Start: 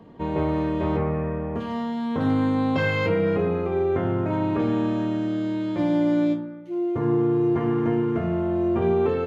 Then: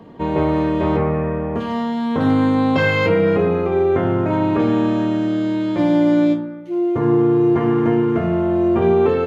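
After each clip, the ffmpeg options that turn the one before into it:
ffmpeg -i in.wav -af "lowshelf=frequency=130:gain=-4.5,volume=7dB" out.wav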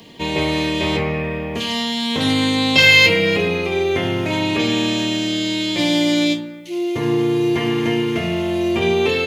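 ffmpeg -i in.wav -af "aexciter=amount=13.1:drive=2.7:freq=2100,volume=-3dB" out.wav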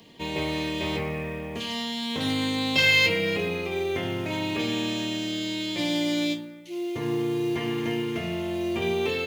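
ffmpeg -i in.wav -af "acrusher=bits=7:mode=log:mix=0:aa=0.000001,volume=-9dB" out.wav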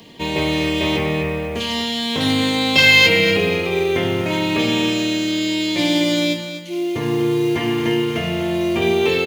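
ffmpeg -i in.wav -af "aecho=1:1:247|494|741:0.316|0.0854|0.0231,volume=8.5dB" out.wav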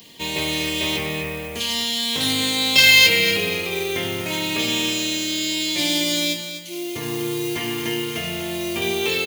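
ffmpeg -i in.wav -af "crystalizer=i=5:c=0,volume=-8dB" out.wav

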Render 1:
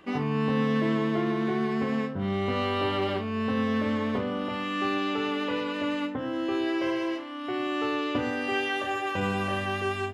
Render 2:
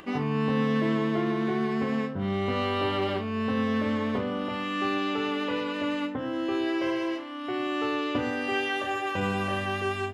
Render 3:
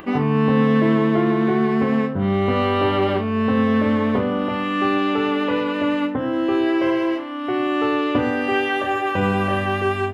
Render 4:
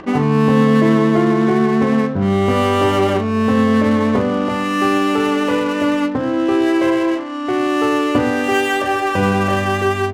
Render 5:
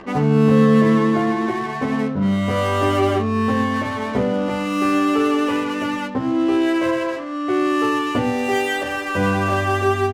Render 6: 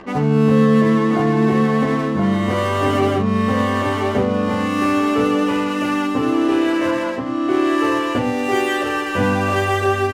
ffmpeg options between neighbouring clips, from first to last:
ffmpeg -i in.wav -af "acompressor=mode=upward:threshold=-42dB:ratio=2.5" out.wav
ffmpeg -i in.wav -af "equalizer=frequency=6100:width_type=o:width=1.9:gain=-10,volume=9dB" out.wav
ffmpeg -i in.wav -af "adynamicsmooth=sensitivity=7:basefreq=1100,volume=4dB" out.wav
ffmpeg -i in.wav -filter_complex "[0:a]asplit=2[link_01][link_02];[link_02]adelay=11.8,afreqshift=0.45[link_03];[link_01][link_03]amix=inputs=2:normalize=1" out.wav
ffmpeg -i in.wav -af "aecho=1:1:1027:0.631" out.wav

